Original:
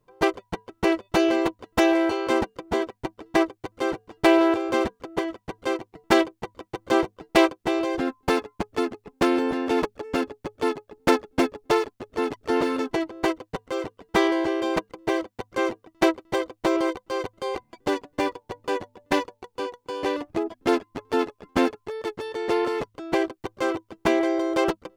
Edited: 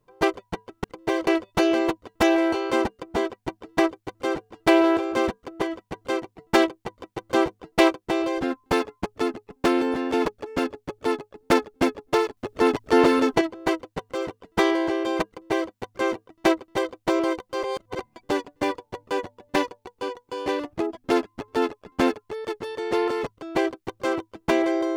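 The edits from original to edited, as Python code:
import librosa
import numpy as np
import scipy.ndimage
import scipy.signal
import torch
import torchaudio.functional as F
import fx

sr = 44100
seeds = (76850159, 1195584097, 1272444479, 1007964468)

y = fx.edit(x, sr, fx.clip_gain(start_s=11.94, length_s=1.04, db=6.0),
    fx.duplicate(start_s=14.84, length_s=0.43, to_s=0.84),
    fx.reverse_span(start_s=17.2, length_s=0.36), tone=tone)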